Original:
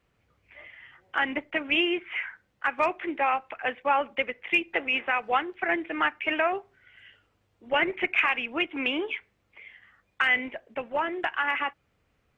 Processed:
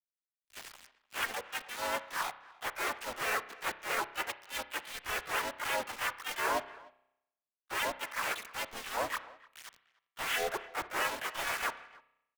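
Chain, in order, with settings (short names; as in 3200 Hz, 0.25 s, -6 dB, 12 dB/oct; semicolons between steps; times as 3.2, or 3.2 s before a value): cycle switcher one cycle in 2, inverted; reverb removal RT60 1.2 s; low shelf 480 Hz -11 dB; reverse; compressor 10:1, threshold -40 dBFS, peak gain reduction 20.5 dB; reverse; mistuned SSB +120 Hz 200–2000 Hz; in parallel at -1 dB: limiter -37 dBFS, peak gain reduction 7.5 dB; on the sum: bit-crush 7-bit; harmoniser -3 st 0 dB, +5 st -1 dB, +7 st -1 dB; speakerphone echo 0.3 s, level -15 dB; spring tank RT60 1.4 s, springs 31 ms, chirp 55 ms, DRR 13 dB; three-band expander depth 70%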